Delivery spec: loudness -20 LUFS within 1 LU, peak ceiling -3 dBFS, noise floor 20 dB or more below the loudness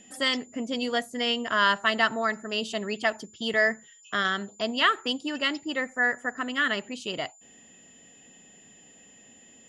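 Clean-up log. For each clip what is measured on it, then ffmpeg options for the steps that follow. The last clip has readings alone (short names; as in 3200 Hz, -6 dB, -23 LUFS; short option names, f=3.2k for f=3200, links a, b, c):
steady tone 7100 Hz; tone level -53 dBFS; loudness -27.0 LUFS; peak -8.5 dBFS; loudness target -20.0 LUFS
-> -af "bandreject=f=7.1k:w=30"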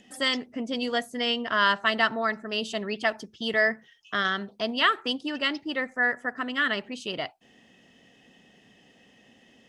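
steady tone none; loudness -27.0 LUFS; peak -8.5 dBFS; loudness target -20.0 LUFS
-> -af "volume=7dB,alimiter=limit=-3dB:level=0:latency=1"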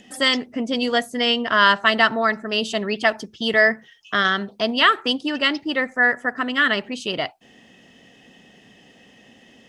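loudness -20.0 LUFS; peak -3.0 dBFS; noise floor -52 dBFS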